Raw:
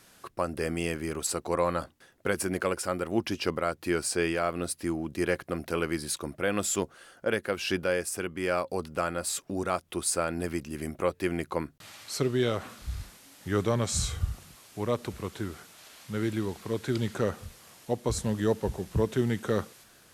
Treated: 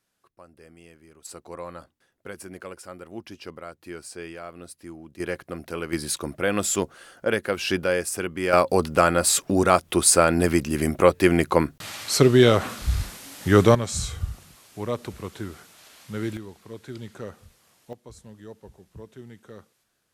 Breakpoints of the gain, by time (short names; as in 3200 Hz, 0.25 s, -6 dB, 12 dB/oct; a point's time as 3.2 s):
-19.5 dB
from 1.25 s -10 dB
from 5.2 s -2 dB
from 5.93 s +4.5 dB
from 8.53 s +11.5 dB
from 13.75 s +0.5 dB
from 16.37 s -8.5 dB
from 17.93 s -16.5 dB